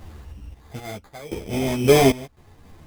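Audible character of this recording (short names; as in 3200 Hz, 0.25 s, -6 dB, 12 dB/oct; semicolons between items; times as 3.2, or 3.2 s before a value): random-step tremolo 3.8 Hz, depth 95%; aliases and images of a low sample rate 2800 Hz, jitter 0%; a shimmering, thickened sound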